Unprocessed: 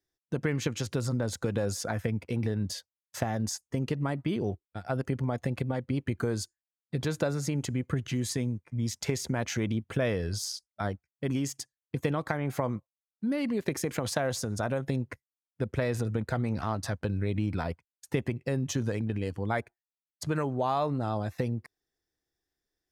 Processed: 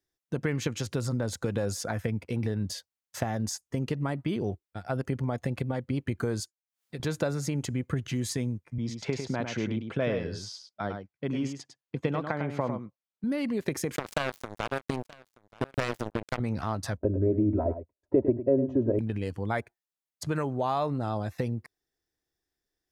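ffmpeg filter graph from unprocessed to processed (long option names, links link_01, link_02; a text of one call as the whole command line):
ffmpeg -i in.wav -filter_complex "[0:a]asettb=1/sr,asplit=3[link_01][link_02][link_03];[link_01]atrim=end=6.404[link_04];[link_02]atrim=start=6.4:end=7,asetpts=PTS-STARTPTS,afade=type=in:duration=0.004:curve=qsin,afade=type=out:start_time=0.596:duration=0.004:curve=qsin,agate=range=-33dB:threshold=-50dB:ratio=3:release=100:detection=peak,lowshelf=frequency=330:gain=-11,acompressor=mode=upward:threshold=-43dB:ratio=2.5:attack=3.2:release=140:knee=2.83:detection=peak[link_05];[link_03]atrim=start=6.996[link_06];[link_04][link_05]acrossfade=duration=0.004:curve1=hsin:curve2=qsin[link_07];[link_07][link_06]acrossfade=duration=0.004:curve1=qsin:curve2=hsin,asettb=1/sr,asplit=3[link_08][link_09][link_10];[link_08]atrim=end=8.784[link_11];[link_09]atrim=start=8.78:end=13.24,asetpts=PTS-STARTPTS,afade=type=in:duration=0.004:curve=qsin,afade=type=out:start_time=4.456:duration=0.004:curve=qsin,highpass=130,lowpass=4000,equalizer=frequency=1800:width=4.5:gain=-3,aecho=1:1:102:0.447,atrim=end_sample=196686[link_12];[link_10]atrim=start=13.236[link_13];[link_11][link_12]acrossfade=duration=0.004:curve1=hsin:curve2=qsin[link_14];[link_14][link_13]acrossfade=duration=0.004:curve1=qsin:curve2=hsin,asettb=1/sr,asplit=3[link_15][link_16][link_17];[link_15]atrim=end=13.964[link_18];[link_16]atrim=start=13.96:end=16.4,asetpts=PTS-STARTPTS,afade=type=in:duration=0.004:curve=qsin,afade=type=out:start_time=2.436:duration=0.004:curve=qsin,acrusher=bits=3:mix=0:aa=0.5,aecho=1:1:928:0.075,atrim=end_sample=107604[link_19];[link_17]atrim=start=16.396[link_20];[link_18][link_19]acrossfade=duration=0.004:curve1=hsin:curve2=qsin[link_21];[link_21][link_20]acrossfade=duration=0.004:curve1=qsin:curve2=hsin,asettb=1/sr,asplit=3[link_22][link_23][link_24];[link_22]atrim=end=16.974[link_25];[link_23]atrim=start=16.97:end=18.99,asetpts=PTS-STARTPTS,afade=type=in:duration=0.004:curve=qsin,afade=type=out:start_time=2.016:duration=0.004:curve=qsin,lowpass=frequency=520:width_type=q:width=3.6,aecho=1:1:3.1:0.93,atrim=end_sample=89082,aecho=1:1:104:0.282,atrim=end_sample=89082[link_26];[link_24]atrim=start=18.986[link_27];[link_25][link_26]acrossfade=duration=0.004:curve1=hsin:curve2=qsin[link_28];[link_28][link_27]acrossfade=duration=0.004:curve1=qsin:curve2=hsin" out.wav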